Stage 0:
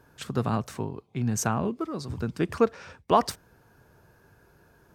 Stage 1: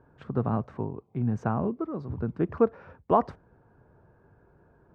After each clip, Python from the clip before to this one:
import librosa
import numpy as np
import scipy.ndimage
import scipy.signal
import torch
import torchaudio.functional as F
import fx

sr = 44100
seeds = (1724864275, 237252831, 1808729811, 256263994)

y = scipy.signal.sosfilt(scipy.signal.butter(2, 1100.0, 'lowpass', fs=sr, output='sos'), x)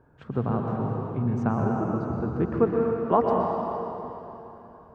y = fx.rev_plate(x, sr, seeds[0], rt60_s=3.3, hf_ratio=0.95, predelay_ms=105, drr_db=-1.0)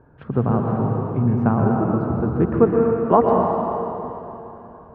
y = fx.air_absorb(x, sr, metres=360.0)
y = y * 10.0 ** (7.5 / 20.0)